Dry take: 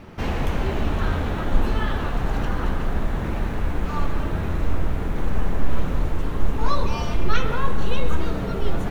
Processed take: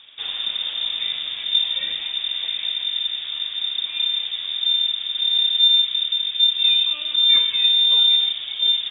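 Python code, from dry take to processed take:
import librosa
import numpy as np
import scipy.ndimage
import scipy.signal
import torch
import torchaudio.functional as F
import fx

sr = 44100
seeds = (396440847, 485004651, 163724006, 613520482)

y = fx.notch(x, sr, hz=2800.0, q=10.0, at=(5.69, 7.9))
y = fx.freq_invert(y, sr, carrier_hz=3600)
y = F.gain(torch.from_numpy(y), -6.0).numpy()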